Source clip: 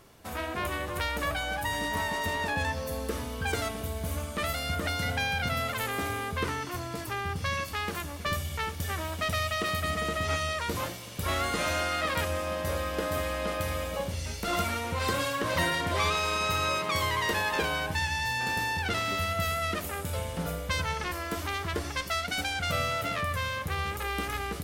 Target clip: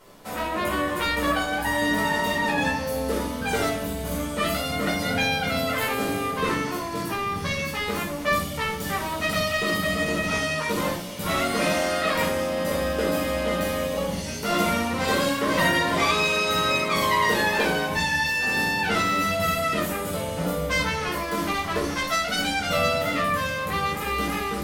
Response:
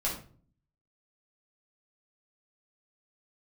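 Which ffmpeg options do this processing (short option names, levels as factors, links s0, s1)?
-filter_complex "[0:a]lowshelf=f=150:t=q:w=1.5:g=-8.5[s0];[1:a]atrim=start_sample=2205,asetrate=39249,aresample=44100[s1];[s0][s1]afir=irnorm=-1:irlink=0"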